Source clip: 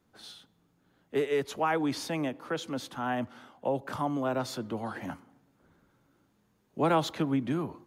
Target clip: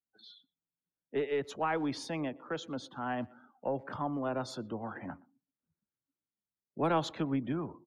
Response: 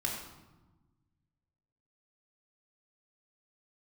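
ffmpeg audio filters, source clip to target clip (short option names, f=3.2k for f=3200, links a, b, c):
-filter_complex "[0:a]afftdn=nr=30:nf=-47,asplit=2[a][b];[b]adelay=120,highpass=300,lowpass=3.4k,asoftclip=type=hard:threshold=-24.5dB,volume=-25dB[c];[a][c]amix=inputs=2:normalize=0,aeval=exprs='0.188*(cos(1*acos(clip(val(0)/0.188,-1,1)))-cos(1*PI/2))+0.0119*(cos(2*acos(clip(val(0)/0.188,-1,1)))-cos(2*PI/2))':c=same,volume=-4dB"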